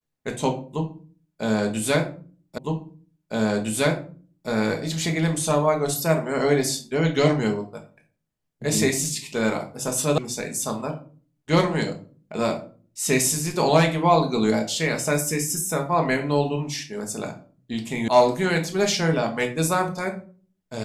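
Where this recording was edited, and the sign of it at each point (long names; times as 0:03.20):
0:02.58: the same again, the last 1.91 s
0:10.18: cut off before it has died away
0:18.08: cut off before it has died away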